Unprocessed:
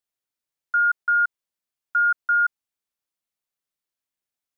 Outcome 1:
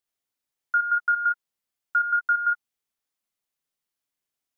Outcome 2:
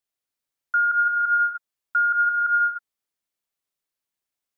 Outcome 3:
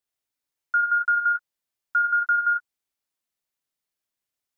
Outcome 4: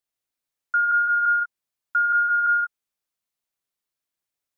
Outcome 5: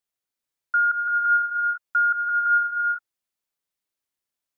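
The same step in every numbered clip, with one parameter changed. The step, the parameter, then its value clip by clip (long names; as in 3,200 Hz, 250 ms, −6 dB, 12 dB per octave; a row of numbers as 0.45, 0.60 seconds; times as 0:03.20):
reverb whose tail is shaped and stops, gate: 90, 330, 140, 210, 530 milliseconds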